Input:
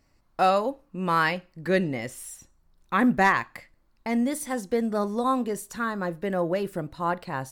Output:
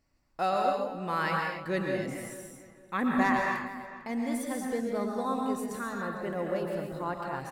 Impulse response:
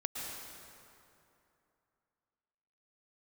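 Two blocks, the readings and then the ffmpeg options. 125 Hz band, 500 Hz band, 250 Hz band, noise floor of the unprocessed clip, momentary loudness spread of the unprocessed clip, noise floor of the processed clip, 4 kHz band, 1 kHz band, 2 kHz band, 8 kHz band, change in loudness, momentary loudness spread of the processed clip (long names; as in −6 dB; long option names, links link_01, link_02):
−6.0 dB, −4.5 dB, −4.5 dB, −65 dBFS, 12 LU, −60 dBFS, −5.5 dB, −5.0 dB, −5.0 dB, −6.0 dB, −5.0 dB, 12 LU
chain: -filter_complex "[0:a]asplit=2[link_01][link_02];[link_02]adelay=450,lowpass=frequency=2900:poles=1,volume=-14.5dB,asplit=2[link_03][link_04];[link_04]adelay=450,lowpass=frequency=2900:poles=1,volume=0.28,asplit=2[link_05][link_06];[link_06]adelay=450,lowpass=frequency=2900:poles=1,volume=0.28[link_07];[link_01][link_03][link_05][link_07]amix=inputs=4:normalize=0[link_08];[1:a]atrim=start_sample=2205,afade=type=out:start_time=0.34:duration=0.01,atrim=end_sample=15435[link_09];[link_08][link_09]afir=irnorm=-1:irlink=0,volume=-6.5dB"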